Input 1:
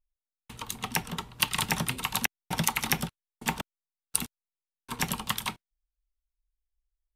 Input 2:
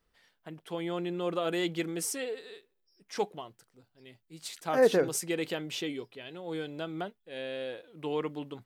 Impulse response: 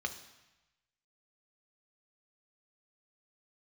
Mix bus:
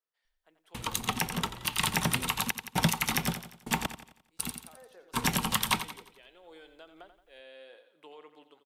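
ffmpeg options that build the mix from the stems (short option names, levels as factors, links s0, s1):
-filter_complex "[0:a]adelay=250,volume=1.12,asplit=2[s0][s1];[s1]volume=0.224[s2];[1:a]highpass=520,acompressor=threshold=0.0141:ratio=6,volume=0.133,asplit=2[s3][s4];[s4]volume=0.299[s5];[s2][s5]amix=inputs=2:normalize=0,aecho=0:1:87|174|261|348|435|522:1|0.45|0.202|0.0911|0.041|0.0185[s6];[s0][s3][s6]amix=inputs=3:normalize=0,dynaudnorm=f=100:g=13:m=2.51,alimiter=limit=0.266:level=0:latency=1:release=153"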